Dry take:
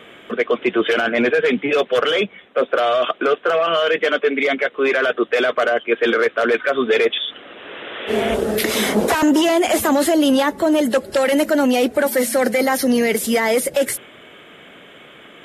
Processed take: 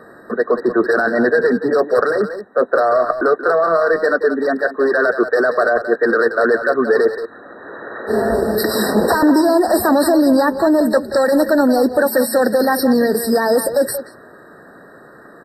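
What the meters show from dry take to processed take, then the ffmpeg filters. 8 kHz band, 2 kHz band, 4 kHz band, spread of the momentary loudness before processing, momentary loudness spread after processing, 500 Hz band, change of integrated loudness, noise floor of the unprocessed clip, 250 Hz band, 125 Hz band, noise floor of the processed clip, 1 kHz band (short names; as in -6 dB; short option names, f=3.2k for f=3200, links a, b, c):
-2.0 dB, +1.0 dB, -7.0 dB, 6 LU, 6 LU, +3.0 dB, +2.0 dB, -44 dBFS, +2.5 dB, +2.5 dB, -42 dBFS, +3.0 dB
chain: -filter_complex "[0:a]asplit=2[a][b];[b]adelay=180,highpass=300,lowpass=3.4k,asoftclip=type=hard:threshold=-13.5dB,volume=-9dB[c];[a][c]amix=inputs=2:normalize=0,afftfilt=real='re*eq(mod(floor(b*sr/1024/1900),2),0)':imag='im*eq(mod(floor(b*sr/1024/1900),2),0)':win_size=1024:overlap=0.75,volume=2.5dB"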